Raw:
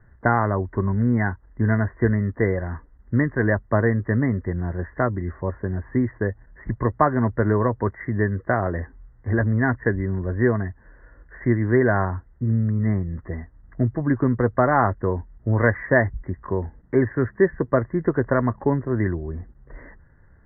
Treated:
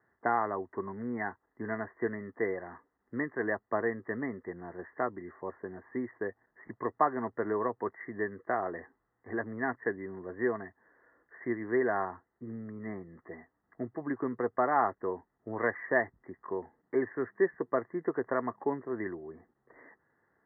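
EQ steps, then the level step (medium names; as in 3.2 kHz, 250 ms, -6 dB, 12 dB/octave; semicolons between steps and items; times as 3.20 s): distance through air 200 m; cabinet simulation 500–2000 Hz, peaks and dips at 570 Hz -9 dB, 980 Hz -5 dB, 1.5 kHz -9 dB; -1.5 dB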